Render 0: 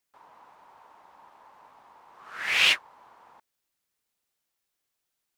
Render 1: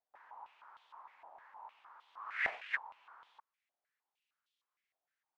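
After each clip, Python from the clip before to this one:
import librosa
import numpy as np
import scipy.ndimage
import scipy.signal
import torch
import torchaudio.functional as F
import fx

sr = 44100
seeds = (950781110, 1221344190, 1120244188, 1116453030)

y = fx.over_compress(x, sr, threshold_db=-28.0, ratio=-0.5)
y = fx.filter_held_bandpass(y, sr, hz=6.5, low_hz=700.0, high_hz=3400.0)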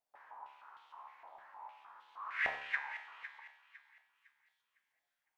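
y = fx.comb_fb(x, sr, f0_hz=71.0, decay_s=0.82, harmonics='all', damping=0.0, mix_pct=80)
y = fx.echo_wet_highpass(y, sr, ms=506, feedback_pct=32, hz=1600.0, wet_db=-10.5)
y = F.gain(torch.from_numpy(y), 11.0).numpy()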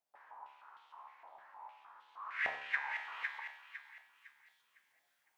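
y = fx.low_shelf(x, sr, hz=74.0, db=-10.0)
y = fx.rider(y, sr, range_db=10, speed_s=0.5)
y = F.gain(torch.from_numpy(y), 3.5).numpy()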